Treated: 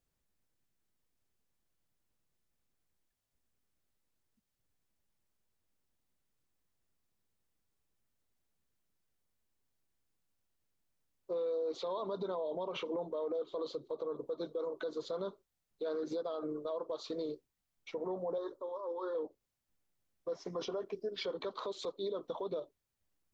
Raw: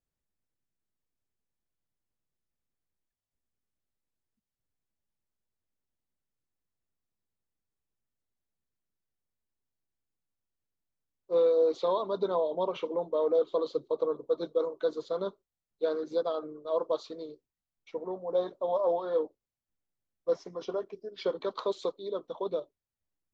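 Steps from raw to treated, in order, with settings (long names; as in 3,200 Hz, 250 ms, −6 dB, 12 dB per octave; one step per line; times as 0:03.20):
downward compressor 6 to 1, threshold −34 dBFS, peak gain reduction 12 dB
brickwall limiter −35.5 dBFS, peak gain reduction 11 dB
0:18.38–0:19.15: phaser with its sweep stopped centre 680 Hz, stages 6
level +5.5 dB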